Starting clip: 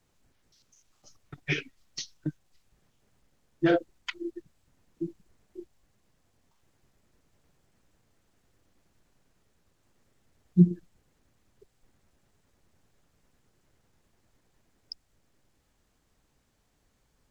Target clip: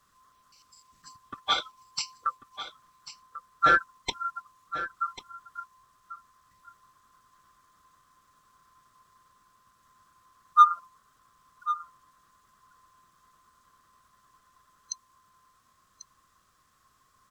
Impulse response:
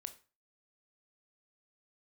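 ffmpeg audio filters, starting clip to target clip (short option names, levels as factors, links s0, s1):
-filter_complex "[0:a]afftfilt=real='real(if(lt(b,960),b+48*(1-2*mod(floor(b/48),2)),b),0)':imag='imag(if(lt(b,960),b+48*(1-2*mod(floor(b/48),2)),b),0)':win_size=2048:overlap=0.75,bass=f=250:g=10,treble=f=4000:g=4,asplit=2[s0][s1];[s1]volume=7.5,asoftclip=hard,volume=0.133,volume=0.355[s2];[s0][s2]amix=inputs=2:normalize=0,aecho=1:1:1092:0.224"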